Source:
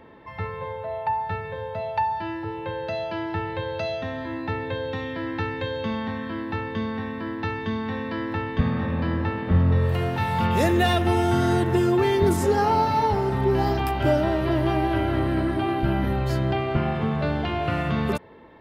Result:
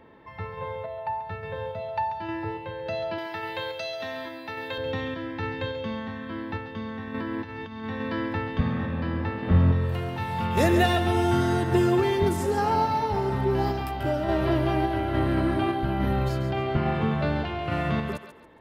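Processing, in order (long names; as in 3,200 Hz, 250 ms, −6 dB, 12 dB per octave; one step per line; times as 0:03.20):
0:03.18–0:04.78: RIAA equalisation recording
0:07.07–0:07.85: compressor whose output falls as the input rises −32 dBFS, ratio −1
sample-and-hold tremolo
feedback echo with a high-pass in the loop 138 ms, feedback 32%, high-pass 540 Hz, level −9 dB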